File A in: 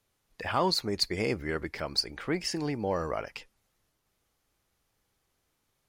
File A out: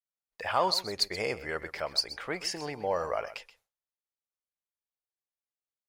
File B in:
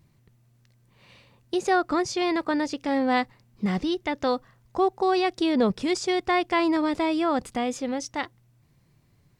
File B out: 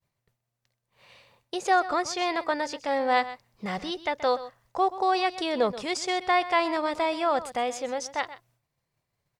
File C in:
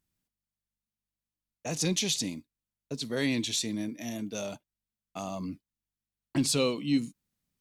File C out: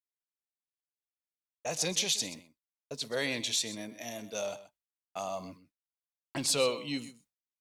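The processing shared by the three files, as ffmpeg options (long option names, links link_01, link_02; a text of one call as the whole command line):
ffmpeg -i in.wav -af "lowshelf=frequency=410:width_type=q:width=1.5:gain=-8.5,aecho=1:1:128:0.178,agate=range=-33dB:threshold=-60dB:ratio=3:detection=peak" out.wav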